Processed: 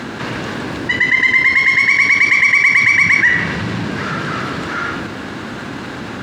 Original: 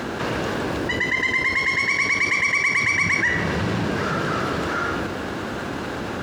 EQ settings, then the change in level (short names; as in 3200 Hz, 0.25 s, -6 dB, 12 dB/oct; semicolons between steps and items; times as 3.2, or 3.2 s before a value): ten-band EQ 125 Hz +7 dB, 250 Hz +7 dB, 1000 Hz +4 dB, 2000 Hz +7 dB, 4000 Hz +6 dB, 8000 Hz +5 dB; dynamic EQ 2100 Hz, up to +5 dB, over -21 dBFS, Q 0.98; -4.5 dB